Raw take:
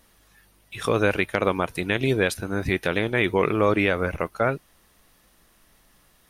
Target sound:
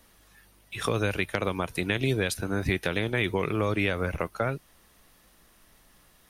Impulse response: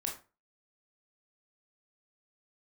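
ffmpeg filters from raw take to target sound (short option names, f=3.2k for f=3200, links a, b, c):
-filter_complex "[0:a]acrossover=split=160|3000[a][b][c];[b]acompressor=threshold=-25dB:ratio=6[d];[a][d][c]amix=inputs=3:normalize=0"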